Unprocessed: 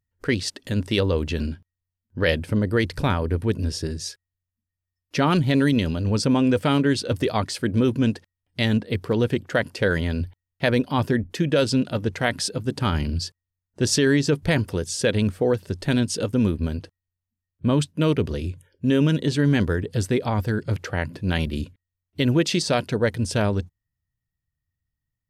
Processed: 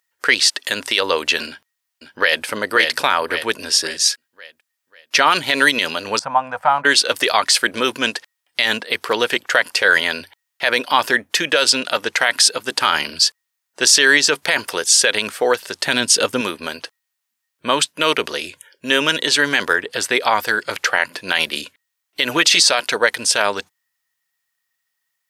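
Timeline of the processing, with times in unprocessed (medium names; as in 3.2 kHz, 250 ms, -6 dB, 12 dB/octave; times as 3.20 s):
1.47–2.44 s: echo throw 540 ms, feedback 40%, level -7.5 dB
6.19–6.85 s: FFT filter 160 Hz 0 dB, 380 Hz -26 dB, 760 Hz +5 dB, 3.3 kHz -26 dB
15.84–16.41 s: bass shelf 230 Hz +11 dB
19.73–20.15 s: tone controls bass 0 dB, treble -6 dB
22.29–22.69 s: comb 6.8 ms
whole clip: high-pass 1 kHz 12 dB/octave; loudness maximiser +18 dB; trim -1 dB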